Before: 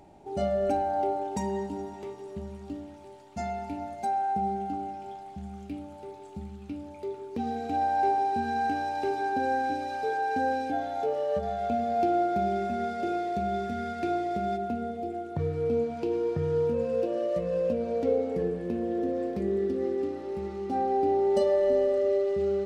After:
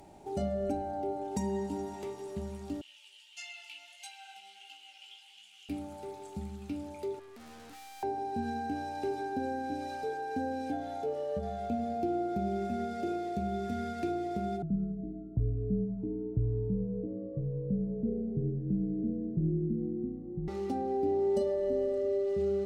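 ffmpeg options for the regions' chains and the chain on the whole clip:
-filter_complex "[0:a]asettb=1/sr,asplit=3[a][b][c];[a]atrim=end=2.814[d];[b]atrim=start=2.81:end=5.69,asetpts=PTS-STARTPTS,afade=t=in:d=0.004:c=qsin,afade=t=out:st=2.876:d=0.004:c=qsin,flanger=delay=16:depth=4.1:speed=1.5,highpass=f=2.9k:t=q:w=10,highshelf=f=8.3k:g=-4.5[e];[c]atrim=start=5.686[f];[d][e]acrossfade=d=0.004:c1=hsin:c2=qsin[g];[g][f]acrossfade=d=0.004:c1=qsin:c2=hsin,asettb=1/sr,asplit=3[h][i][j];[h]atrim=end=7.194[k];[i]atrim=start=7.19:end=8.03,asetpts=PTS-STARTPTS,afade=t=in:d=0.004:c=qsin,afade=t=out:st=0.836:d=0.004:c=qsin,equalizer=f=610:w=3.2:g=-11.5,aeval=exprs='(tanh(316*val(0)+0.35)-tanh(0.35))/316':c=same[l];[j]atrim=start=8.026[m];[k][l]acrossfade=d=0.004:c1=hsin:c2=qsin[n];[n][m]acrossfade=d=0.004:c1=qsin:c2=hsin,asettb=1/sr,asplit=3[o][p][q];[o]atrim=end=14.624[r];[p]atrim=start=14.62:end=20.48,asetpts=PTS-STARTPTS,afade=t=in:d=0.004:c=qsin,afade=t=out:st=5.856:d=0.004:c=qsin,lowpass=f=220:t=q:w=1.6,afreqshift=-38[s];[q]atrim=start=20.476[t];[r][s]acrossfade=d=0.004:c1=hsin:c2=qsin[u];[u][t]acrossfade=d=0.004:c1=qsin:c2=hsin,aemphasis=mode=production:type=cd,acrossover=split=410[v][w];[w]acompressor=threshold=-39dB:ratio=6[x];[v][x]amix=inputs=2:normalize=0"

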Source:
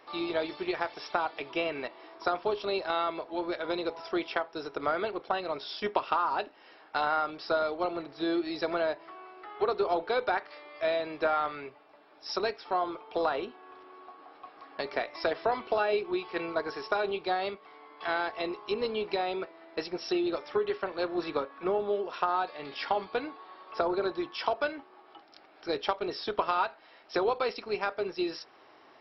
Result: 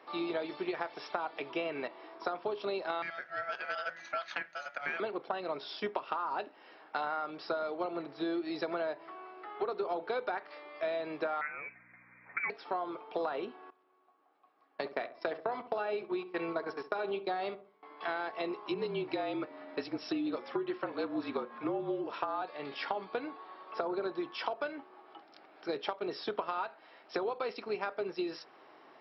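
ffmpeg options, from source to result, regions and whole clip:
-filter_complex "[0:a]asettb=1/sr,asplit=3[a][b][c];[a]atrim=end=3.024[d];[b]atrim=start=3.02:end=5,asetpts=PTS-STARTPTS,afade=t=in:d=0.004:c=qsin,afade=t=out:st=1.976:d=0.004:c=qsin,aeval=exprs='val(0)*sin(2*PI*1000*n/s)':c=same,lowshelf=f=560:t=q:w=1.5:g=-12[e];[c]atrim=start=4.996[f];[d][e]acrossfade=d=0.004:c1=hsin:c2=qsin[g];[g][f]acrossfade=d=0.004:c1=qsin:c2=hsin,asettb=1/sr,asplit=3[h][i][j];[h]atrim=end=11.414[k];[i]atrim=start=11.41:end=12.5,asetpts=PTS-STARTPTS,afade=t=in:d=0.004:c=qsin,afade=t=out:st=1.086:d=0.004:c=qsin,lowpass=f=2.3k:t=q:w=0.5098,lowpass=f=2.3k:t=q:w=0.6013,lowpass=f=2.3k:t=q:w=0.9,lowpass=f=2.3k:t=q:w=2.563,afreqshift=-2700,aeval=exprs='val(0)+0.000891*(sin(2*PI*60*n/s)+sin(2*PI*2*60*n/s)/2+sin(2*PI*3*60*n/s)/3+sin(2*PI*4*60*n/s)/4+sin(2*PI*5*60*n/s)/5)':c=same[l];[j]atrim=start=12.496[m];[k][l]acrossfade=d=0.004:c1=hsin:c2=qsin[n];[n][m]acrossfade=d=0.004:c1=qsin:c2=hsin,asettb=1/sr,asplit=3[o][p][q];[o]atrim=end=13.704[r];[p]atrim=start=13.7:end=17.83,asetpts=PTS-STARTPTS,afade=t=in:d=0.004:c=qsin,afade=t=out:st=4.126:d=0.004:c=qsin,agate=range=-19dB:threshold=-39dB:ratio=16:release=100:detection=peak,asplit=2[s][t];[t]adelay=66,lowpass=f=1.1k:p=1,volume=-13dB,asplit=2[u][v];[v]adelay=66,lowpass=f=1.1k:p=1,volume=0.41,asplit=2[w][x];[x]adelay=66,lowpass=f=1.1k:p=1,volume=0.41,asplit=2[y][z];[z]adelay=66,lowpass=f=1.1k:p=1,volume=0.41[aa];[s][u][w][y][aa]amix=inputs=5:normalize=0,atrim=end_sample=182133[ab];[q]atrim=start=17.826[ac];[r][ab]acrossfade=d=0.004:c1=hsin:c2=qsin[ad];[ad][ac]acrossfade=d=0.004:c1=qsin:c2=hsin,asettb=1/sr,asplit=3[ae][af][ag];[ae]atrim=end=18.664[ah];[af]atrim=start=18.66:end=22.42,asetpts=PTS-STARTPTS,afade=t=in:d=0.004:c=qsin,afade=t=out:st=3.756:d=0.004:c=qsin,afreqshift=-46,acompressor=mode=upward:threshold=-40dB:ratio=2.5:attack=3.2:release=140:knee=2.83:detection=peak[ai];[ag]atrim=start=22.416[aj];[ah][ai]acrossfade=d=0.004:c1=hsin:c2=qsin[ak];[ak][aj]acrossfade=d=0.004:c1=qsin:c2=hsin,highpass=f=130:w=0.5412,highpass=f=130:w=1.3066,highshelf=f=4.9k:g=-11,acompressor=threshold=-31dB:ratio=6"

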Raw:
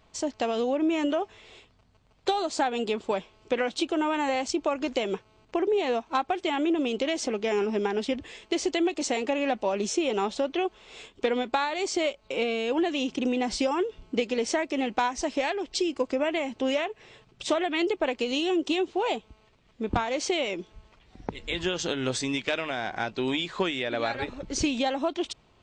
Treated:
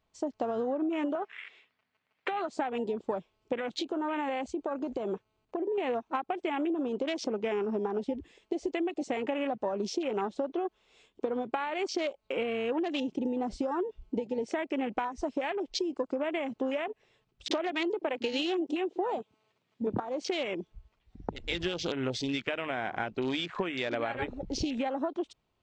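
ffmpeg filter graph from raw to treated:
-filter_complex "[0:a]asettb=1/sr,asplit=3[a][b][c];[a]atrim=end=1.154[d];[b]atrim=start=1.15:end=2.49,asetpts=PTS-STARTPTS,afade=t=in:d=0.004:c=qsin,afade=t=out:st=1.336:d=0.004:c=qsin,highpass=200,lowpass=6.6k,equalizer=f=2k:w=0.95:g=14.5,acompressor=threshold=-25dB:ratio=3:attack=3.2:release=140:knee=1:detection=peak[e];[c]atrim=start=2.486[f];[d][e]acrossfade=d=0.004:c1=hsin:c2=qsin[g];[g][f]acrossfade=d=0.004:c1=qsin:c2=hsin,asettb=1/sr,asplit=3[h][i][j];[h]atrim=end=3.594[k];[i]atrim=start=3.59:end=5.78,asetpts=PTS-STARTPTS,afade=t=in:d=0.004:c=qsin,afade=t=out:st=2.186:d=0.004:c=qsin,bandreject=f=5.4k:w=11,acompressor=threshold=-27dB:ratio=6:attack=3.2:release=140:knee=1:detection=peak[l];[j]atrim=start=5.776[m];[k][l]acrossfade=d=0.004:c1=hsin:c2=qsin[n];[n][m]acrossfade=d=0.004:c1=qsin:c2=hsin,asettb=1/sr,asplit=3[o][p][q];[o]atrim=end=17.484[r];[p]atrim=start=17.48:end=20,asetpts=PTS-STARTPTS,afade=t=in:d=0.004:c=qsin,afade=t=out:st=2.516:d=0.004:c=qsin,highpass=f=120:w=0.5412,highpass=f=120:w=1.3066,acontrast=45,acrossover=split=210[s][t];[t]adelay=30[u];[s][u]amix=inputs=2:normalize=0,atrim=end_sample=111132[v];[q]atrim=start=19.996[w];[r][v]acrossfade=d=0.004:c1=hsin:c2=qsin[x];[x][w]acrossfade=d=0.004:c1=qsin:c2=hsin,acompressor=threshold=-27dB:ratio=16,afwtdn=0.0126"

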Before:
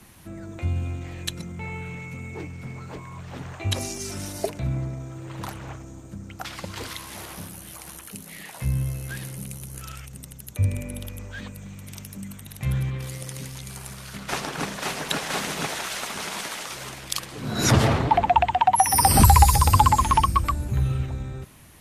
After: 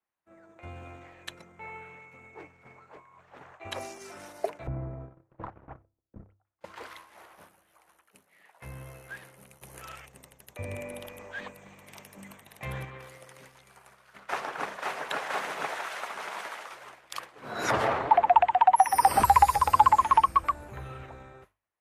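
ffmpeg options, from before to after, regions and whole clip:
-filter_complex "[0:a]asettb=1/sr,asplit=3[a][b][c];[a]atrim=end=4.674[d];[b]atrim=start=4.67:end=6.61,asetpts=PTS-STARTPTS,afade=t=in:d=0.004:c=qsin,afade=t=out:st=1.936:d=0.004:c=qsin,lowpass=f=1.4k:p=1,aemphasis=mode=reproduction:type=riaa,agate=range=-17dB:threshold=-25dB:ratio=16:release=100:detection=peak[e];[c]atrim=start=6.606[f];[d][e]acrossfade=d=0.004:c1=hsin:c2=qsin[g];[g][f]acrossfade=d=0.004:c1=qsin:c2=hsin,asettb=1/sr,asplit=3[h][i][j];[h]atrim=end=9.614[k];[i]atrim=start=9.61:end=12.85,asetpts=PTS-STARTPTS,afade=t=in:d=0.004:c=qsin,afade=t=out:st=3.236:d=0.004:c=qsin,equalizer=f=1.4k:t=o:w=0.32:g=-7,acontrast=46[l];[j]atrim=start=12.846[m];[k][l]acrossfade=d=0.004:c1=hsin:c2=qsin[n];[n][m]acrossfade=d=0.004:c1=qsin:c2=hsin,agate=range=-33dB:threshold=-30dB:ratio=3:detection=peak,acrossover=split=440 2200:gain=0.1 1 0.178[o][p][q];[o][p][q]amix=inputs=3:normalize=0,bandreject=f=50:t=h:w=6,bandreject=f=100:t=h:w=6"

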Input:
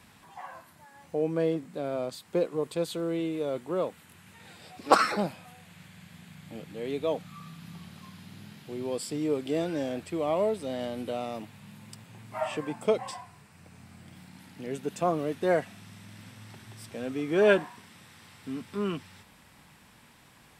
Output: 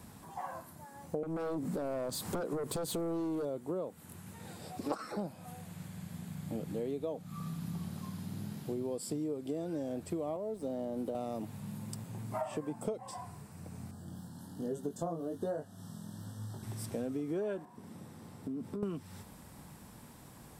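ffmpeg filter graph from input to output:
-filter_complex "[0:a]asettb=1/sr,asplit=3[a][b][c];[a]atrim=end=1.234[d];[b]atrim=start=1.23:end=3.45,asetpts=PTS-STARTPTS,afade=t=in:d=0.004:c=qsin,afade=t=out:st=2.216:d=0.004:c=qsin,acompressor=threshold=-45dB:ratio=2:attack=3.2:release=140:knee=1:detection=peak,aeval=exprs='0.0398*sin(PI/2*3.16*val(0)/0.0398)':c=same[e];[c]atrim=start=3.446[f];[d][e]acrossfade=d=0.004:c1=hsin:c2=qsin[g];[g][f]acrossfade=d=0.004:c1=qsin:c2=hsin,asettb=1/sr,asplit=3[h][i][j];[h]atrim=end=10.364[k];[i]atrim=start=10.36:end=11.15,asetpts=PTS-STARTPTS,afade=t=in:d=0.004:c=qsin,afade=t=out:st=0.786:d=0.004:c=qsin,acrossover=split=160|1000[l][m][n];[l]acompressor=threshold=-58dB:ratio=4[o];[m]acompressor=threshold=-31dB:ratio=4[p];[n]acompressor=threshold=-53dB:ratio=4[q];[o][p][q]amix=inputs=3:normalize=0,aeval=exprs='sgn(val(0))*max(abs(val(0))-0.00168,0)':c=same[r];[j]atrim=start=11.146[s];[k][r]acrossfade=d=0.004:c1=hsin:c2=qsin[t];[t][s]acrossfade=d=0.004:c1=qsin:c2=hsin,asettb=1/sr,asplit=3[u][v][w];[u]atrim=end=13.914[x];[v]atrim=start=13.91:end=16.63,asetpts=PTS-STARTPTS,afade=t=in:d=0.004:c=qsin,afade=t=out:st=2.716:d=0.004:c=qsin,flanger=delay=20:depth=4.1:speed=1.2,asuperstop=centerf=2300:order=12:qfactor=2.2,asplit=2[y][z];[z]adelay=18,volume=-12dB[aa];[y][aa]amix=inputs=2:normalize=0,atrim=end_sample=119952[ab];[w]atrim=start=16.626[ac];[x][ab]acrossfade=d=0.004:c1=hsin:c2=qsin[ad];[ad][ac]acrossfade=d=0.004:c1=qsin:c2=hsin,asettb=1/sr,asplit=3[ae][af][ag];[ae]atrim=end=17.654[ah];[af]atrim=start=17.65:end=18.83,asetpts=PTS-STARTPTS,afade=t=in:d=0.004:c=qsin,afade=t=out:st=1.176:d=0.004:c=qsin,highpass=f=300:p=1,tiltshelf=f=770:g=8,acompressor=threshold=-41dB:ratio=12:attack=3.2:release=140:knee=1:detection=peak[ai];[ag]atrim=start=18.826[aj];[ah][ai]acrossfade=d=0.004:c1=hsin:c2=qsin[ak];[ak][aj]acrossfade=d=0.004:c1=qsin:c2=hsin,equalizer=f=2.5k:t=o:w=2.2:g=-14,acompressor=threshold=-40dB:ratio=16,volume=7dB"

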